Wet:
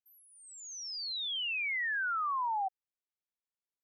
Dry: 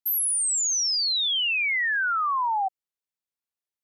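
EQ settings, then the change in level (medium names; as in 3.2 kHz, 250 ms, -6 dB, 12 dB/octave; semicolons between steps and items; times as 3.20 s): distance through air 190 m; -7.0 dB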